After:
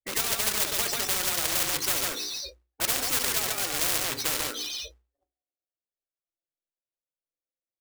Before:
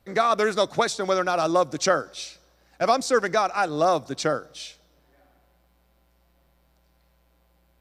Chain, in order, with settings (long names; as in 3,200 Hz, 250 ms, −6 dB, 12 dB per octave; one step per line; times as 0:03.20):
phaser with its sweep stopped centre 440 Hz, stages 4
loudspeakers that aren't time-aligned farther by 24 metres −11 dB, 48 metres −6 dB
in parallel at +2.5 dB: downward compressor 6 to 1, threshold −37 dBFS, peak gain reduction 18.5 dB
on the sum: spectral peaks only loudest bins 16
noise gate −49 dBFS, range −57 dB
mains-hum notches 60/120/180/240/300/360/420 Hz
floating-point word with a short mantissa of 2 bits
on a send at −8.5 dB: convolution reverb, pre-delay 3 ms
on the sum: every bin compressed towards the loudest bin 10 to 1
level −1.5 dB